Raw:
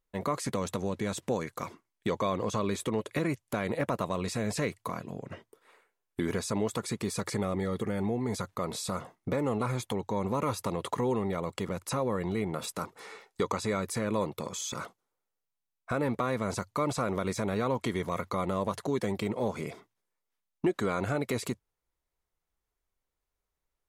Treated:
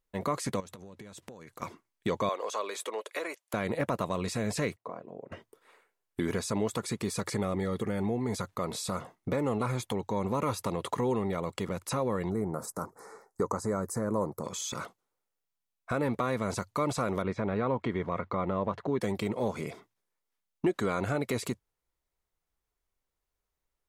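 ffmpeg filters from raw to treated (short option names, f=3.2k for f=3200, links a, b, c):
-filter_complex "[0:a]asettb=1/sr,asplit=3[a][b][c];[a]atrim=end=0.604[d];[b]atrim=start=0.6:end=1.62,asetpts=PTS-STARTPTS,afade=t=in:d=0.004:c=qsin,afade=t=out:st=1.016:d=0.004:c=qsin,acompressor=threshold=-42dB:ratio=20:attack=3.2:release=140:knee=1:detection=peak[e];[c]atrim=start=1.616[f];[d][e]acrossfade=d=0.004:c1=hsin:c2=qsin[g];[g][f]acrossfade=d=0.004:c1=qsin:c2=hsin,asettb=1/sr,asplit=3[h][i][j];[h]atrim=end=2.294[k];[i]atrim=start=2.29:end=3.54,asetpts=PTS-STARTPTS,afade=t=in:d=0.004:c=qsin,afade=t=out:st=1.246:d=0.004:c=qsin,highpass=f=460:w=0.5412,highpass=f=460:w=1.3066[l];[j]atrim=start=3.536[m];[k][l]acrossfade=d=0.004:c1=hsin:c2=qsin[n];[n][m]acrossfade=d=0.004:c1=qsin:c2=hsin,asettb=1/sr,asplit=3[o][p][q];[o]atrim=end=4.764[r];[p]atrim=start=4.76:end=5.32,asetpts=PTS-STARTPTS,afade=t=in:d=0.004:c=qsin,afade=t=out:st=0.556:d=0.004:c=qsin,bandpass=f=530:t=q:w=1.3[s];[q]atrim=start=5.316[t];[r][s]acrossfade=d=0.004:c1=hsin:c2=qsin[u];[u][t]acrossfade=d=0.004:c1=qsin:c2=hsin,asplit=3[v][w][x];[v]afade=t=out:st=12.29:d=0.02[y];[w]asuperstop=centerf=3000:order=4:qfactor=0.64,afade=t=in:st=12.29:d=0.02,afade=t=out:st=14.43:d=0.02[z];[x]afade=t=in:st=14.43:d=0.02[aa];[y][z][aa]amix=inputs=3:normalize=0,asettb=1/sr,asplit=3[ab][ac][ad];[ab]atrim=end=17.224[ae];[ac]atrim=start=17.22:end=19.01,asetpts=PTS-STARTPTS,afade=t=in:d=0.004:c=qsin,afade=t=out:st=1.786:d=0.004:c=qsin,lowpass=2.3k[af];[ad]atrim=start=19.006[ag];[ae][af]acrossfade=d=0.004:c1=hsin:c2=qsin[ah];[ah][ag]acrossfade=d=0.004:c1=qsin:c2=hsin"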